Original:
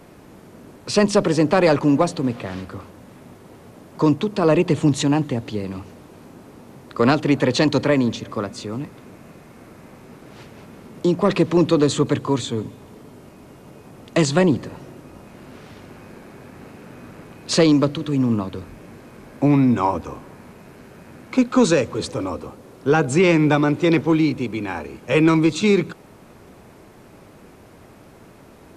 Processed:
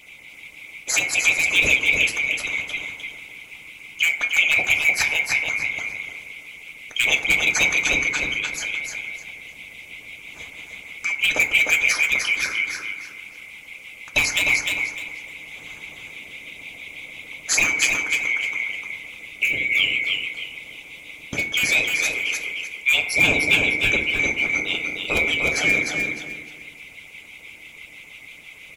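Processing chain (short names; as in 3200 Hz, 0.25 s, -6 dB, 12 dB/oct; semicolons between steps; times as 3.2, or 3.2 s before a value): band-swap scrambler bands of 2000 Hz; in parallel at 0 dB: compressor 5:1, threshold -27 dBFS, peak gain reduction 15 dB; on the sum: LFO notch sine 6.1 Hz 340–3800 Hz; wavefolder -6.5 dBFS; on a send: feedback echo 0.303 s, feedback 27%, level -4 dB; on the sum: FDN reverb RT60 1.2 s, low-frequency decay 0.95×, high-frequency decay 0.35×, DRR 1 dB; harmonic-percussive split harmonic -11 dB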